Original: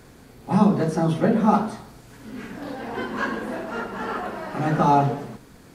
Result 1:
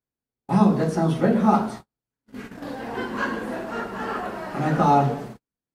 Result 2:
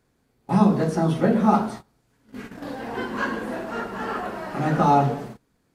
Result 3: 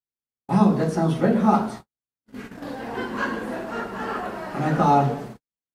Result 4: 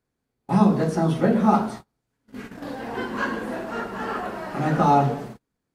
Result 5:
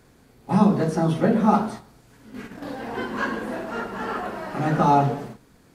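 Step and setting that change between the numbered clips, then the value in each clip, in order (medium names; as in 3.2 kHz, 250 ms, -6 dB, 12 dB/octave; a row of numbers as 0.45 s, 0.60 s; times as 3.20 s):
gate, range: -45 dB, -20 dB, -59 dB, -32 dB, -7 dB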